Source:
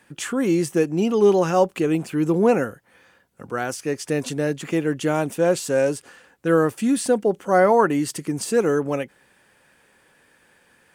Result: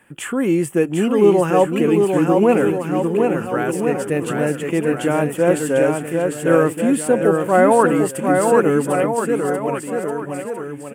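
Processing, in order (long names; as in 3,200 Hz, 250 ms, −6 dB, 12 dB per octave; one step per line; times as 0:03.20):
flat-topped bell 4,900 Hz −12.5 dB 1 octave
bouncing-ball delay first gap 750 ms, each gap 0.85×, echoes 5
level +2.5 dB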